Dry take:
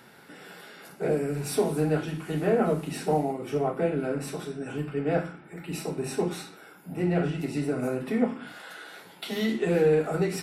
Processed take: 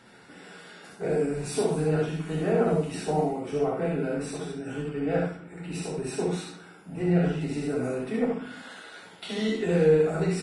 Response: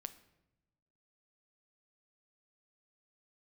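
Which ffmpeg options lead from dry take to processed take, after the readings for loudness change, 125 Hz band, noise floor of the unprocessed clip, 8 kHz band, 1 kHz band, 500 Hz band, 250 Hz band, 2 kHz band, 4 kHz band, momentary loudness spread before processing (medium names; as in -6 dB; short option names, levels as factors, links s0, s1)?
+0.5 dB, +1.5 dB, -52 dBFS, -0.5 dB, -1.0 dB, +0.5 dB, +0.5 dB, -0.5 dB, 0.0 dB, 18 LU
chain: -filter_complex "[0:a]acontrast=22,lowshelf=f=84:g=7.5,aecho=1:1:25|64|75:0.422|0.596|0.596[s0];[1:a]atrim=start_sample=2205,asetrate=70560,aresample=44100[s1];[s0][s1]afir=irnorm=-1:irlink=0" -ar 22050 -c:a libvorbis -b:a 32k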